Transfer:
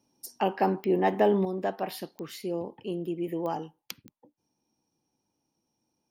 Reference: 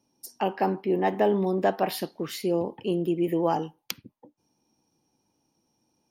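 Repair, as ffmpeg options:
-af "adeclick=t=4,asetnsamples=n=441:p=0,asendcmd='1.45 volume volume 6.5dB',volume=0dB"

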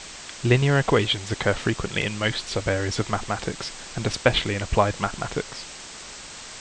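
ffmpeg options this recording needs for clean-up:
-af "afwtdn=0.016"

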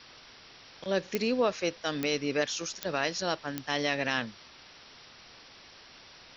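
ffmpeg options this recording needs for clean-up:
-af "adeclick=t=4,afwtdn=0.0045"

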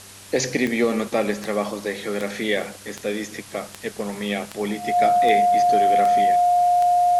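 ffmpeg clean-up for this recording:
-af "adeclick=t=4,bandreject=f=98.9:t=h:w=4,bandreject=f=197.8:t=h:w=4,bandreject=f=296.7:t=h:w=4,bandreject=f=395.6:t=h:w=4,bandreject=f=494.5:t=h:w=4,bandreject=f=710:w=30,afwtdn=0.0089"

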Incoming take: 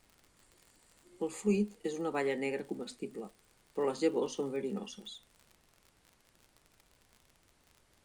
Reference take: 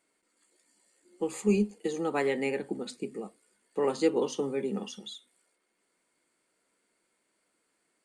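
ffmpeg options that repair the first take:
-af "adeclick=t=4,agate=range=-21dB:threshold=-61dB,asetnsamples=n=441:p=0,asendcmd='1.22 volume volume 4.5dB',volume=0dB"

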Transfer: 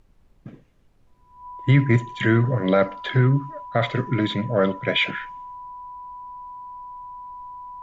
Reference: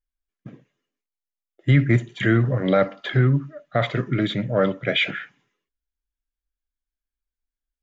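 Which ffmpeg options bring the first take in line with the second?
-af "bandreject=f=990:w=30,agate=range=-21dB:threshold=-47dB"

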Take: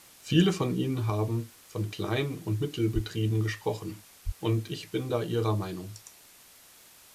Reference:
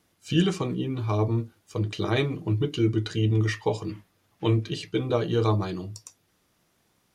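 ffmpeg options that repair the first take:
-filter_complex "[0:a]adeclick=t=4,asplit=3[a][b][c];[a]afade=t=out:st=2.94:d=0.02[d];[b]highpass=f=140:w=0.5412,highpass=f=140:w=1.3066,afade=t=in:st=2.94:d=0.02,afade=t=out:st=3.06:d=0.02[e];[c]afade=t=in:st=3.06:d=0.02[f];[d][e][f]amix=inputs=3:normalize=0,asplit=3[g][h][i];[g]afade=t=out:st=4.25:d=0.02[j];[h]highpass=f=140:w=0.5412,highpass=f=140:w=1.3066,afade=t=in:st=4.25:d=0.02,afade=t=out:st=4.37:d=0.02[k];[i]afade=t=in:st=4.37:d=0.02[l];[j][k][l]amix=inputs=3:normalize=0,afwtdn=0.0022,asetnsamples=n=441:p=0,asendcmd='1.1 volume volume 4.5dB',volume=0dB"

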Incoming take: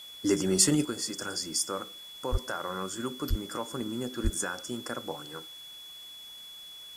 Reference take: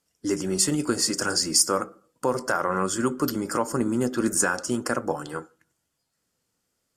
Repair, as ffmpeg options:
-filter_complex "[0:a]bandreject=f=3.4k:w=30,asplit=3[a][b][c];[a]afade=t=out:st=2.31:d=0.02[d];[b]highpass=f=140:w=0.5412,highpass=f=140:w=1.3066,afade=t=in:st=2.31:d=0.02,afade=t=out:st=2.43:d=0.02[e];[c]afade=t=in:st=2.43:d=0.02[f];[d][e][f]amix=inputs=3:normalize=0,asplit=3[g][h][i];[g]afade=t=out:st=3.29:d=0.02[j];[h]highpass=f=140:w=0.5412,highpass=f=140:w=1.3066,afade=t=in:st=3.29:d=0.02,afade=t=out:st=3.41:d=0.02[k];[i]afade=t=in:st=3.41:d=0.02[l];[j][k][l]amix=inputs=3:normalize=0,asplit=3[m][n][o];[m]afade=t=out:st=4.23:d=0.02[p];[n]highpass=f=140:w=0.5412,highpass=f=140:w=1.3066,afade=t=in:st=4.23:d=0.02,afade=t=out:st=4.35:d=0.02[q];[o]afade=t=in:st=4.35:d=0.02[r];[p][q][r]amix=inputs=3:normalize=0,afwtdn=0.002,asetnsamples=n=441:p=0,asendcmd='0.85 volume volume 10dB',volume=0dB"

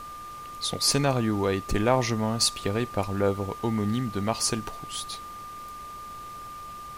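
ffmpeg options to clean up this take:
-af "bandreject=f=1.2k:w=30,afftdn=nr=30:nf=-40"

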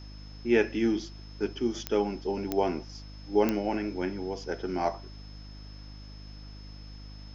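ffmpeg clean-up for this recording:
-af "adeclick=t=4,bandreject=f=51:t=h:w=4,bandreject=f=102:t=h:w=4,bandreject=f=153:t=h:w=4,bandreject=f=204:t=h:w=4,bandreject=f=255:t=h:w=4,bandreject=f=306:t=h:w=4,bandreject=f=5.2k:w=30,agate=range=-21dB:threshold=-37dB"

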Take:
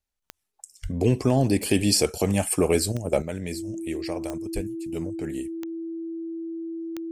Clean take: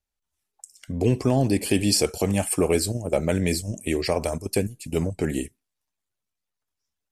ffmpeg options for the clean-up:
-filter_complex "[0:a]adeclick=t=4,bandreject=f=330:w=30,asplit=3[a][b][c];[a]afade=t=out:st=0.82:d=0.02[d];[b]highpass=f=140:w=0.5412,highpass=f=140:w=1.3066,afade=t=in:st=0.82:d=0.02,afade=t=out:st=0.94:d=0.02[e];[c]afade=t=in:st=0.94:d=0.02[f];[d][e][f]amix=inputs=3:normalize=0,asplit=3[g][h][i];[g]afade=t=out:st=4.54:d=0.02[j];[h]highpass=f=140:w=0.5412,highpass=f=140:w=1.3066,afade=t=in:st=4.54:d=0.02,afade=t=out:st=4.66:d=0.02[k];[i]afade=t=in:st=4.66:d=0.02[l];[j][k][l]amix=inputs=3:normalize=0,asetnsamples=n=441:p=0,asendcmd='3.22 volume volume 9dB',volume=0dB"

